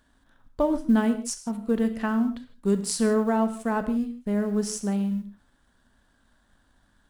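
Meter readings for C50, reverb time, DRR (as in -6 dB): 11.0 dB, no single decay rate, 9.0 dB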